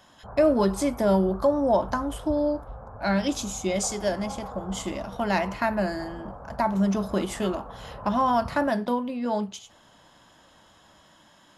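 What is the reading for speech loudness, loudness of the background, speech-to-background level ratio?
−26.0 LKFS, −41.5 LKFS, 15.5 dB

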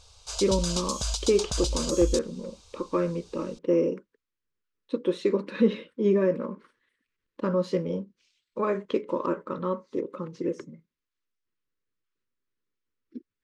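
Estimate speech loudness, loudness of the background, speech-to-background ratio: −28.5 LKFS, −31.0 LKFS, 2.5 dB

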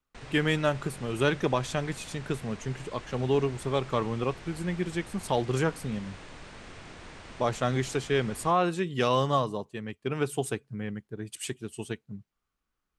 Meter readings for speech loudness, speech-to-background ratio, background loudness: −30.0 LKFS, 16.5 dB, −46.5 LKFS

